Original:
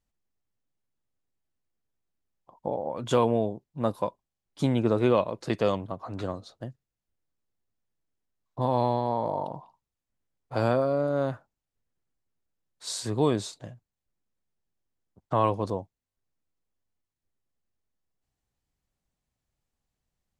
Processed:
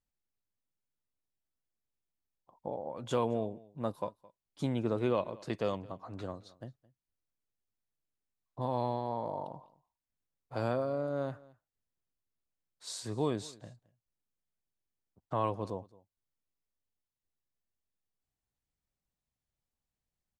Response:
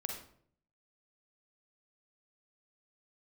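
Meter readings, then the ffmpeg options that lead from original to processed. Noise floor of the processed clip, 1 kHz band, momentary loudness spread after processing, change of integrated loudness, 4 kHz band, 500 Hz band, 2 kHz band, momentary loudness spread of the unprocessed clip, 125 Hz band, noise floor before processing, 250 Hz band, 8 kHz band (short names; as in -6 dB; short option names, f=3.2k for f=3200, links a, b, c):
under -85 dBFS, -8.0 dB, 16 LU, -8.0 dB, -8.0 dB, -8.0 dB, -8.0 dB, 16 LU, -8.0 dB, under -85 dBFS, -8.0 dB, -8.0 dB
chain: -af "aecho=1:1:217:0.075,volume=-8dB"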